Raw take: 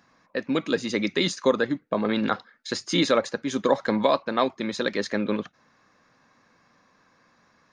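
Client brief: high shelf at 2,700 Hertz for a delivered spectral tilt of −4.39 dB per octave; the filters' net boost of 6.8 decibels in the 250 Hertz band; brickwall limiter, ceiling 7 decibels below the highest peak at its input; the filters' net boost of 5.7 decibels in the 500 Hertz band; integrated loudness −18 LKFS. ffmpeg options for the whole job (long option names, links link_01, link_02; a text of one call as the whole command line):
ffmpeg -i in.wav -af "equalizer=frequency=250:width_type=o:gain=7,equalizer=frequency=500:width_type=o:gain=4.5,highshelf=frequency=2700:gain=7.5,volume=4dB,alimiter=limit=-5dB:level=0:latency=1" out.wav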